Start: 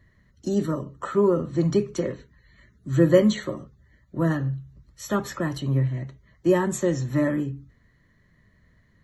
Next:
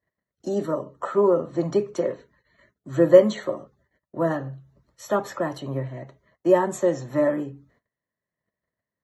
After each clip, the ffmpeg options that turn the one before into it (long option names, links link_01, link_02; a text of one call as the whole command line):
ffmpeg -i in.wav -af "agate=range=-23dB:threshold=-55dB:ratio=16:detection=peak,highpass=frequency=200:poles=1,equalizer=frequency=680:width=0.89:gain=13,volume=-4.5dB" out.wav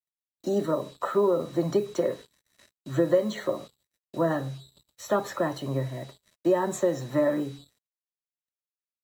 ffmpeg -i in.wav -af "acompressor=threshold=-19dB:ratio=5,aeval=exprs='val(0)+0.002*sin(2*PI*3900*n/s)':channel_layout=same,acrusher=bits=7:mix=0:aa=0.5" out.wav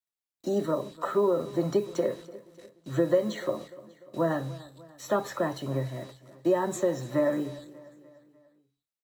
ffmpeg -i in.wav -af "aecho=1:1:296|592|888|1184:0.112|0.0583|0.0303|0.0158,volume=-1.5dB" out.wav